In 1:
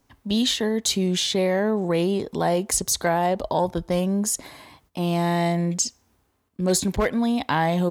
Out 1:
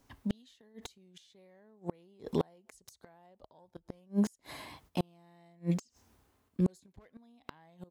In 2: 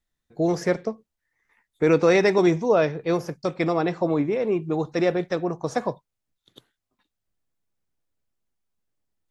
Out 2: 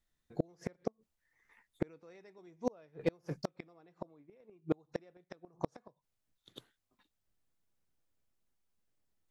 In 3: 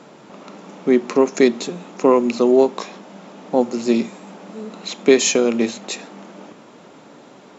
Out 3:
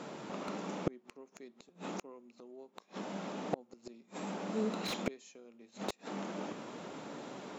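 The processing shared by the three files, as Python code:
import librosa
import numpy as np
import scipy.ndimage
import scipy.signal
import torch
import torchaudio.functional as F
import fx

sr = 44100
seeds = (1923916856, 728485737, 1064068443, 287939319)

y = fx.gate_flip(x, sr, shuts_db=-16.0, range_db=-37)
y = fx.slew_limit(y, sr, full_power_hz=60.0)
y = y * librosa.db_to_amplitude(-1.5)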